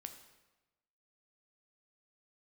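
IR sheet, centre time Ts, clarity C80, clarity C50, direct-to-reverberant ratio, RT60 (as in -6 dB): 16 ms, 11.0 dB, 9.0 dB, 6.5 dB, 1.1 s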